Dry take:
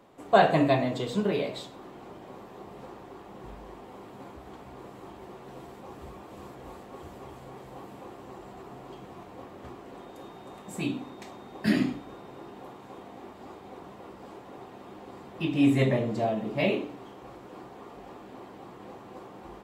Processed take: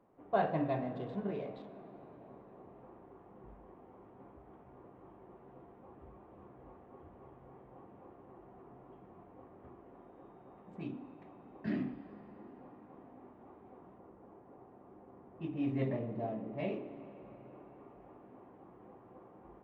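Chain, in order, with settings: local Wiener filter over 9 samples; tape spacing loss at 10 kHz 34 dB; de-hum 69.9 Hz, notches 8; reverberation RT60 5.0 s, pre-delay 24 ms, DRR 12 dB; 13.98–16.53 s: tape noise reduction on one side only decoder only; trim -9 dB

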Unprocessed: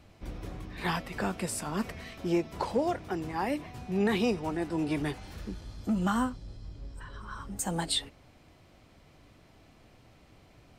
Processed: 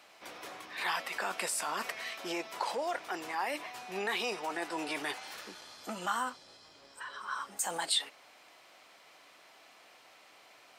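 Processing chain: high-pass 800 Hz 12 dB/octave; in parallel at -3 dB: compressor with a negative ratio -41 dBFS, ratio -0.5

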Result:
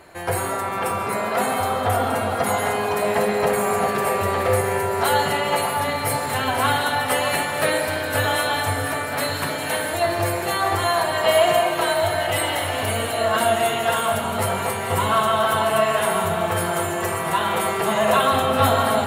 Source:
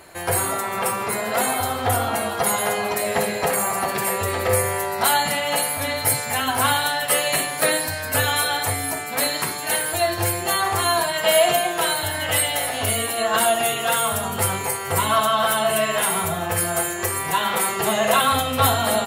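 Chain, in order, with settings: treble shelf 4 kHz -9 dB; echo whose repeats swap between lows and highs 621 ms, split 1.5 kHz, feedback 71%, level -6.5 dB; reverberation RT60 2.1 s, pre-delay 95 ms, DRR 7.5 dB

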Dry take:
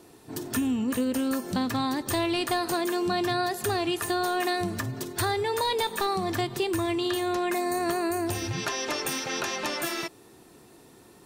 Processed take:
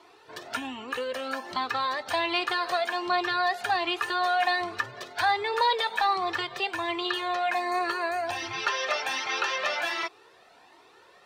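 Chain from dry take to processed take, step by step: three-band isolator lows -23 dB, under 510 Hz, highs -23 dB, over 4.6 kHz; Shepard-style flanger rising 1.3 Hz; trim +9 dB

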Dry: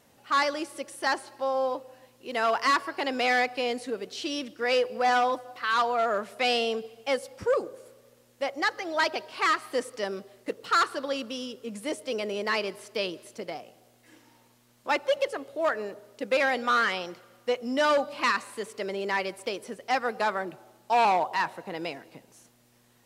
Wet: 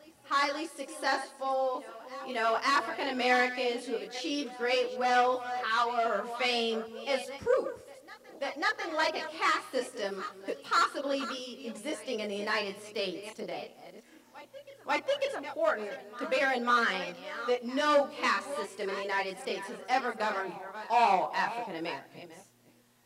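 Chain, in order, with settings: chunks repeated in reverse 380 ms, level -12 dB; reverse echo 545 ms -19.5 dB; chorus voices 2, 0.18 Hz, delay 25 ms, depth 3.8 ms

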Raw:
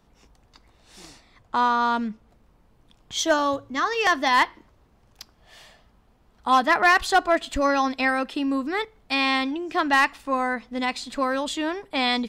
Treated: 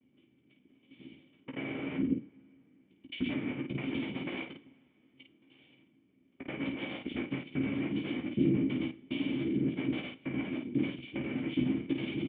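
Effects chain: time reversed locally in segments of 82 ms; gate with hold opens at -51 dBFS; bass shelf 190 Hz -9.5 dB; compression, threshold -25 dBFS, peak gain reduction 10.5 dB; noise-vocoded speech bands 3; cascade formant filter i; distance through air 150 m; early reflections 15 ms -5 dB, 52 ms -5 dB; on a send at -11.5 dB: reverberation, pre-delay 3 ms; on the sum: trim +7.5 dB

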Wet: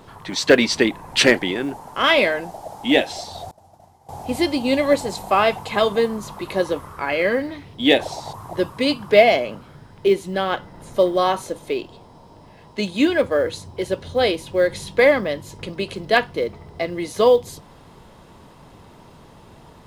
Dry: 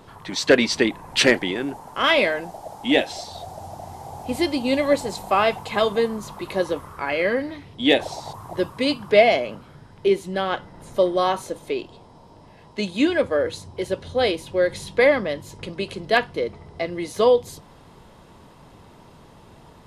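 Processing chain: companded quantiser 8-bit; 3.51–4.09 s: expander -25 dBFS; trim +2 dB

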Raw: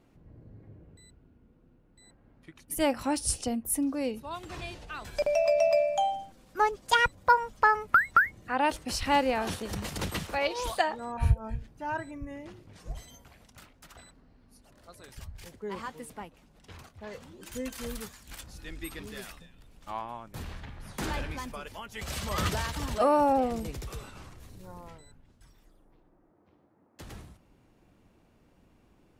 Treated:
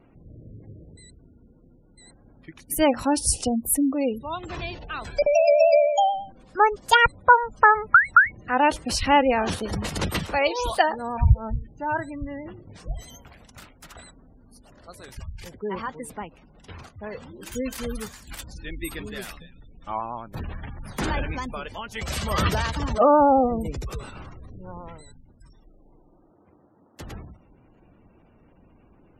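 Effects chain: vibrato 9.2 Hz 37 cents; spectral gate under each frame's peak -25 dB strong; trim +7 dB

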